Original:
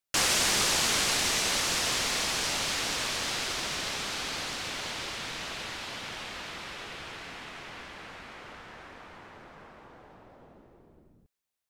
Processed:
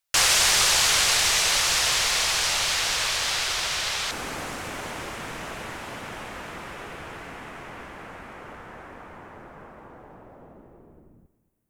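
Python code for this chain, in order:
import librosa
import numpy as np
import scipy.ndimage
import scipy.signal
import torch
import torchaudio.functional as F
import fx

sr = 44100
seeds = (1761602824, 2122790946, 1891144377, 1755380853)

y = fx.peak_eq(x, sr, hz=fx.steps((0.0, 250.0), (4.11, 4200.0)), db=-14.5, octaves=1.5)
y = fx.echo_feedback(y, sr, ms=230, feedback_pct=39, wet_db=-17.0)
y = y * 10.0 ** (6.5 / 20.0)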